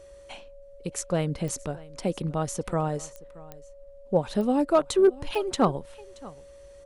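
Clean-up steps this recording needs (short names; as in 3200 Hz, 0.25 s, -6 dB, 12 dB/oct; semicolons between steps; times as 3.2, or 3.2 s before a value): clip repair -11.5 dBFS; de-click; notch 560 Hz, Q 30; inverse comb 0.626 s -21 dB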